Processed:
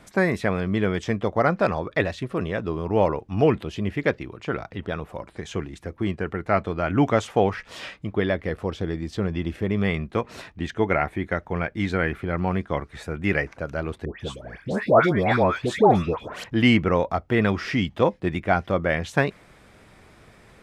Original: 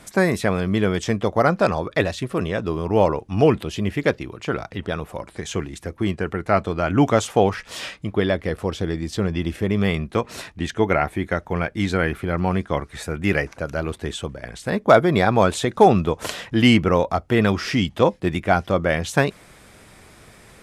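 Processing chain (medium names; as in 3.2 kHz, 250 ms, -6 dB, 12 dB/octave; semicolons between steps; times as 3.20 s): peaking EQ 11 kHz -10 dB 1.9 oct; 14.05–16.44 s: phase dispersion highs, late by 149 ms, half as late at 1.4 kHz; dynamic bell 2 kHz, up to +4 dB, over -36 dBFS, Q 2.2; trim -3 dB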